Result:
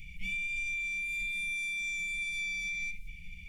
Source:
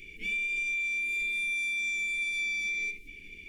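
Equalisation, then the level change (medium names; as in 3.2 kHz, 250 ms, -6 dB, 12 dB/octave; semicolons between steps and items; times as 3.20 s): brick-wall FIR band-stop 200–1800 Hz; tilt shelf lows +9 dB, about 740 Hz; treble shelf 3 kHz +8.5 dB; 0.0 dB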